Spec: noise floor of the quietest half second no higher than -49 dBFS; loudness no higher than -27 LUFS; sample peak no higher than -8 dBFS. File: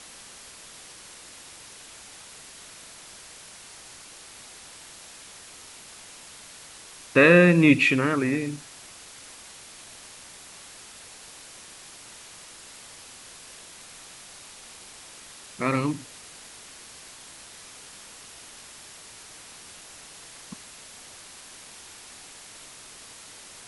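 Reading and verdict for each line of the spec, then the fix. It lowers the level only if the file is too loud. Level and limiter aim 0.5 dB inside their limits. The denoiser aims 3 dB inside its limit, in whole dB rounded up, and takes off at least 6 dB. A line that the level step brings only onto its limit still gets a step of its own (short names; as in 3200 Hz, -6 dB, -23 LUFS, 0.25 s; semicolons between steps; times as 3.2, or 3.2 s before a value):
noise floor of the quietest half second -46 dBFS: fail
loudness -20.5 LUFS: fail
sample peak -4.0 dBFS: fail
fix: gain -7 dB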